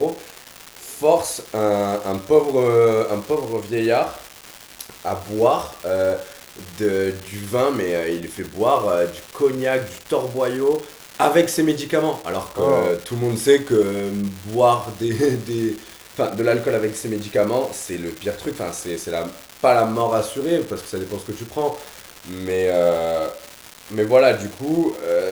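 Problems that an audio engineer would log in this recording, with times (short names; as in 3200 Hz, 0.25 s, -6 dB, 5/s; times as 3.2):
crackle 510/s -26 dBFS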